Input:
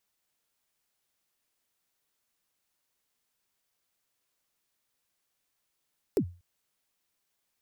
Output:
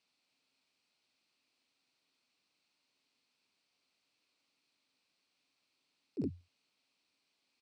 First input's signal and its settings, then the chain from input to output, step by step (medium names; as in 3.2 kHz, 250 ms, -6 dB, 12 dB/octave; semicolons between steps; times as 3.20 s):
kick drum length 0.24 s, from 470 Hz, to 88 Hz, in 78 ms, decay 0.33 s, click on, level -18.5 dB
on a send: early reflections 47 ms -14 dB, 69 ms -12 dB; on the sum: slow attack 119 ms; cabinet simulation 120–7500 Hz, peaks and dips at 270 Hz +9 dB, 1.7 kHz -5 dB, 2.5 kHz +8 dB, 4.3 kHz +8 dB, 6.8 kHz -7 dB